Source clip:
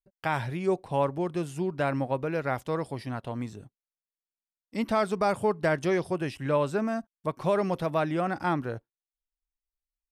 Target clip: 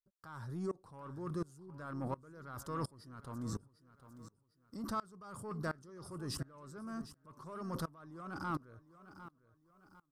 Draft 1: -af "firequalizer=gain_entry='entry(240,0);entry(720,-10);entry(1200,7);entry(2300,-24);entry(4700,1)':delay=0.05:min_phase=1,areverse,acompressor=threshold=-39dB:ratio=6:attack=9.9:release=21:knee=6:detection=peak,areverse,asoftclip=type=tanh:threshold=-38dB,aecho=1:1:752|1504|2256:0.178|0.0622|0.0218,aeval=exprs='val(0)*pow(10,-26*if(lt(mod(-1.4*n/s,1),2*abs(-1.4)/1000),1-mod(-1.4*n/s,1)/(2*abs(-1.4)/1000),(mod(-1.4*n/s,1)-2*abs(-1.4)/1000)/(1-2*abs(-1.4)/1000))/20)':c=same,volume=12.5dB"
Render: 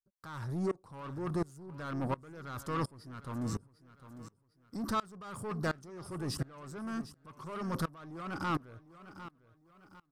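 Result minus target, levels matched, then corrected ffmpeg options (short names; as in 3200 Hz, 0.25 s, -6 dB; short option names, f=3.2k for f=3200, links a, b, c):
compressor: peak gain reduction -9 dB
-af "firequalizer=gain_entry='entry(240,0);entry(720,-10);entry(1200,7);entry(2300,-24);entry(4700,1)':delay=0.05:min_phase=1,areverse,acompressor=threshold=-49.5dB:ratio=6:attack=9.9:release=21:knee=6:detection=peak,areverse,asoftclip=type=tanh:threshold=-38dB,aecho=1:1:752|1504|2256:0.178|0.0622|0.0218,aeval=exprs='val(0)*pow(10,-26*if(lt(mod(-1.4*n/s,1),2*abs(-1.4)/1000),1-mod(-1.4*n/s,1)/(2*abs(-1.4)/1000),(mod(-1.4*n/s,1)-2*abs(-1.4)/1000)/(1-2*abs(-1.4)/1000))/20)':c=same,volume=12.5dB"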